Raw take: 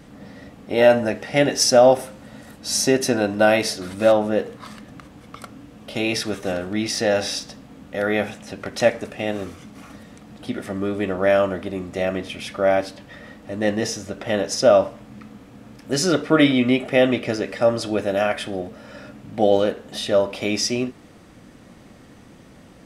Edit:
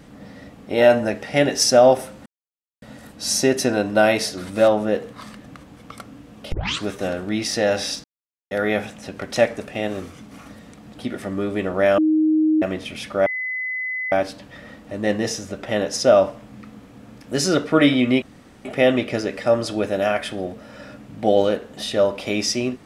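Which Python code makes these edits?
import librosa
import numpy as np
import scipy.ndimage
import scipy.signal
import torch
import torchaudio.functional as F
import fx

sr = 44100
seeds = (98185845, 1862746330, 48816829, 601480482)

y = fx.edit(x, sr, fx.insert_silence(at_s=2.26, length_s=0.56),
    fx.tape_start(start_s=5.96, length_s=0.33),
    fx.silence(start_s=7.48, length_s=0.47),
    fx.bleep(start_s=11.42, length_s=0.64, hz=312.0, db=-14.0),
    fx.insert_tone(at_s=12.7, length_s=0.86, hz=2020.0, db=-23.5),
    fx.insert_room_tone(at_s=16.8, length_s=0.43), tone=tone)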